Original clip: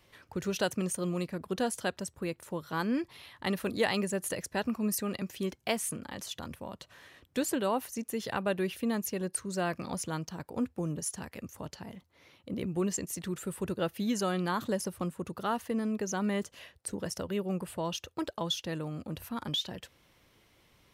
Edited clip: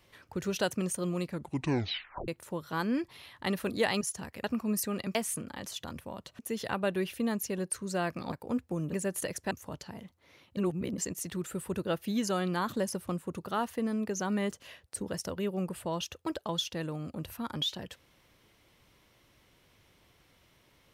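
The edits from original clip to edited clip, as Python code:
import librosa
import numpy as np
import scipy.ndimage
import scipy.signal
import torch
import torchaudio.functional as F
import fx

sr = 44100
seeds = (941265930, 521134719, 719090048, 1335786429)

y = fx.edit(x, sr, fx.tape_stop(start_s=1.3, length_s=0.98),
    fx.swap(start_s=4.01, length_s=0.58, other_s=11.0, other_length_s=0.43),
    fx.cut(start_s=5.3, length_s=0.4),
    fx.cut(start_s=6.94, length_s=1.08),
    fx.cut(start_s=9.95, length_s=0.44),
    fx.reverse_span(start_s=12.49, length_s=0.41), tone=tone)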